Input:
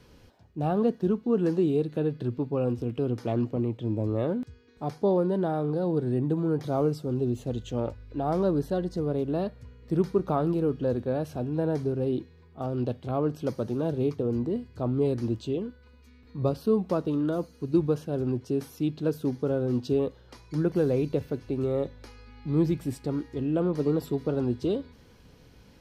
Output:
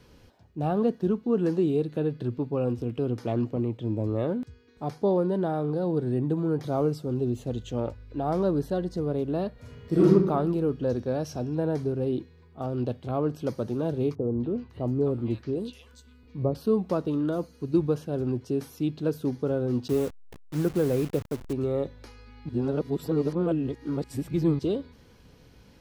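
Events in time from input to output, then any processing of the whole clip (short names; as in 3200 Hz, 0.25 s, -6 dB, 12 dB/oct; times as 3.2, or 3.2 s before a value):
9.54–10.06 reverb throw, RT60 0.9 s, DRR -8.5 dB
10.89–11.55 bell 5600 Hz +14.5 dB 0.42 oct
14.15–16.55 three bands offset in time lows, mids, highs 0.25/0.55 s, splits 1100/5000 Hz
19.88–21.53 level-crossing sampler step -36.5 dBFS
22.49–24.59 reverse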